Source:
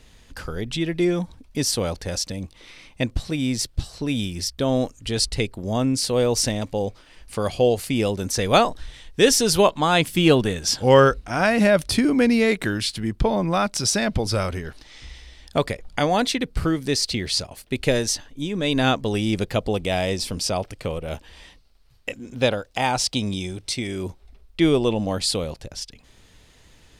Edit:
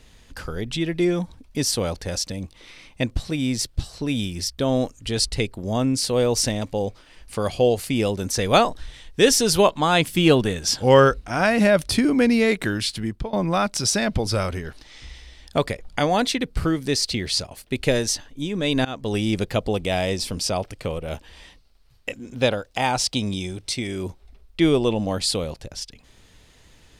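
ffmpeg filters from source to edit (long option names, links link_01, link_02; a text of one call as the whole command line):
ffmpeg -i in.wav -filter_complex "[0:a]asplit=3[link_01][link_02][link_03];[link_01]atrim=end=13.33,asetpts=PTS-STARTPTS,afade=type=out:start_time=13.02:duration=0.31:silence=0.1[link_04];[link_02]atrim=start=13.33:end=18.85,asetpts=PTS-STARTPTS,afade=type=in:duration=0.004:curve=hsin:silence=0.1,afade=type=out:start_time=5.516:duration=0.004:curve=hsin:silence=0.0630957[link_05];[link_03]atrim=start=18.85,asetpts=PTS-STARTPTS,afade=type=in:duration=0.29:silence=0.0630957[link_06];[link_04][link_05][link_06]concat=n=3:v=0:a=1" out.wav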